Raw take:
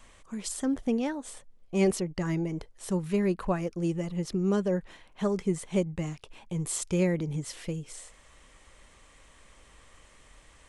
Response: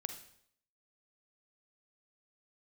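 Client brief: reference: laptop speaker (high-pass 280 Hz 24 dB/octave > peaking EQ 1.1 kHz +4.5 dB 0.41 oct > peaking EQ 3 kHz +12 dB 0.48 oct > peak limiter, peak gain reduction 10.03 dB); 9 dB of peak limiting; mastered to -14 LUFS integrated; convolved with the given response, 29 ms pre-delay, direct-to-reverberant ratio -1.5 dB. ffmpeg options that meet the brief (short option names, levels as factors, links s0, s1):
-filter_complex "[0:a]alimiter=limit=0.0708:level=0:latency=1,asplit=2[s0][s1];[1:a]atrim=start_sample=2205,adelay=29[s2];[s1][s2]afir=irnorm=-1:irlink=0,volume=1.41[s3];[s0][s3]amix=inputs=2:normalize=0,highpass=f=280:w=0.5412,highpass=f=280:w=1.3066,equalizer=f=1100:t=o:w=0.41:g=4.5,equalizer=f=3000:t=o:w=0.48:g=12,volume=11.2,alimiter=limit=0.596:level=0:latency=1"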